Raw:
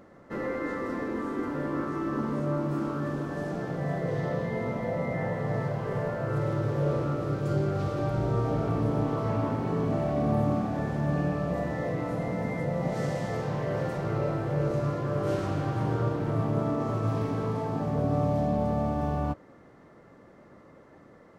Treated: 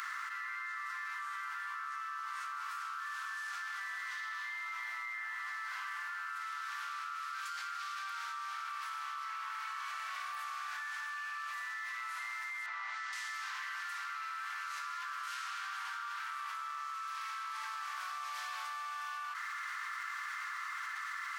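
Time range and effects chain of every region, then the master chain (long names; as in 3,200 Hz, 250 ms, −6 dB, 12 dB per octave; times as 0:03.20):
0:12.66–0:13.13: band-pass filter 610–5,900 Hz + spectral tilt −3.5 dB per octave
whole clip: Butterworth high-pass 1,200 Hz 48 dB per octave; envelope flattener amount 100%; level −2.5 dB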